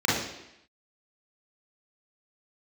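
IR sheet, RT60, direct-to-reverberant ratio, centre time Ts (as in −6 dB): 0.85 s, −7.5 dB, 64 ms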